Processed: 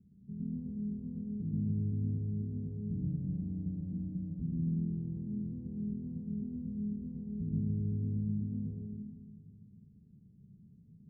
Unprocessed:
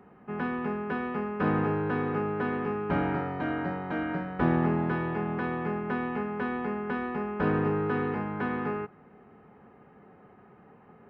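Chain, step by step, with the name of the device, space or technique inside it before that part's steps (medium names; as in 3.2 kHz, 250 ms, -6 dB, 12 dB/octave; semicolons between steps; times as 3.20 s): club heard from the street (peak limiter -21.5 dBFS, peak gain reduction 8.5 dB; low-pass 180 Hz 24 dB/octave; reverberation RT60 1.4 s, pre-delay 98 ms, DRR -1.5 dB)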